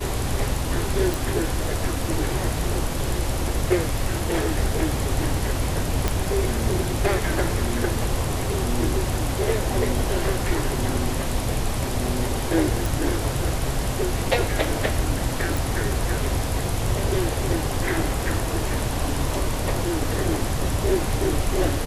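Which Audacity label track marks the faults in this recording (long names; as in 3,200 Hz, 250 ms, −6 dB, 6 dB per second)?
1.140000	1.140000	click
6.080000	6.080000	click
12.860000	12.860000	click
15.570000	15.570000	click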